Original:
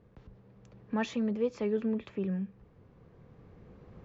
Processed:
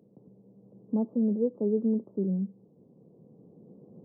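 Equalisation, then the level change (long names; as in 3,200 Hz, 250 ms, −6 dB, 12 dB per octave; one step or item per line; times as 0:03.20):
Gaussian smoothing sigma 15 samples
high-pass filter 170 Hz 24 dB per octave
+6.5 dB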